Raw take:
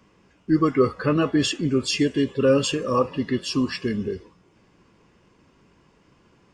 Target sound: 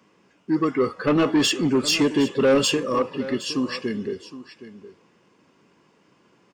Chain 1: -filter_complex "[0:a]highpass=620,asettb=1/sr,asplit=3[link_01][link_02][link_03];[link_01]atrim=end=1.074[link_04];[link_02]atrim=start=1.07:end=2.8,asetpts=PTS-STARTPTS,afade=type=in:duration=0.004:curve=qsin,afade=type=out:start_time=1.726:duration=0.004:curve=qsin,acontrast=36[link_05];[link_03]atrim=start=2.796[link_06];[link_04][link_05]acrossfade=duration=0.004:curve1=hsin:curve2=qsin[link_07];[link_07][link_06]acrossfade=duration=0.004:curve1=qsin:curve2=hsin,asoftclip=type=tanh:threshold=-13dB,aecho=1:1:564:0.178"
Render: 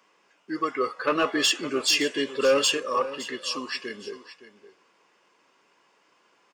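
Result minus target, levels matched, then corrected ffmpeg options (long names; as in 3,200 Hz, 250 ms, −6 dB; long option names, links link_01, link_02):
250 Hz band −7.5 dB; echo 202 ms early
-filter_complex "[0:a]highpass=180,asettb=1/sr,asplit=3[link_01][link_02][link_03];[link_01]atrim=end=1.074[link_04];[link_02]atrim=start=1.07:end=2.8,asetpts=PTS-STARTPTS,afade=type=in:duration=0.004:curve=qsin,afade=type=out:start_time=1.726:duration=0.004:curve=qsin,acontrast=36[link_05];[link_03]atrim=start=2.796[link_06];[link_04][link_05]acrossfade=duration=0.004:curve1=hsin:curve2=qsin[link_07];[link_07][link_06]acrossfade=duration=0.004:curve1=qsin:curve2=hsin,asoftclip=type=tanh:threshold=-13dB,aecho=1:1:766:0.178"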